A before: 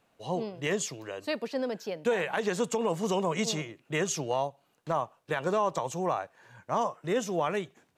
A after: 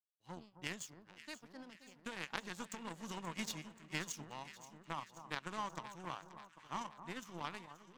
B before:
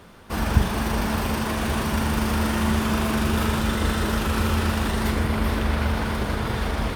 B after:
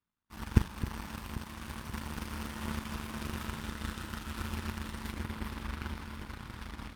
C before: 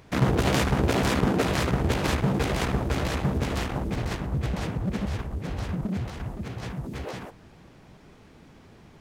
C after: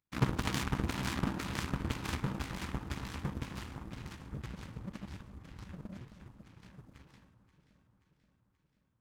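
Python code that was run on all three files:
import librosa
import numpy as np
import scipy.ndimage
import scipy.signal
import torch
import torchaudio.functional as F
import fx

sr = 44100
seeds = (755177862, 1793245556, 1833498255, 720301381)

y = fx.band_shelf(x, sr, hz=530.0, db=-13.0, octaves=1.1)
y = fx.power_curve(y, sr, exponent=2.0)
y = fx.echo_alternate(y, sr, ms=265, hz=1300.0, feedback_pct=77, wet_db=-11.5)
y = F.gain(torch.from_numpy(y), -2.0).numpy()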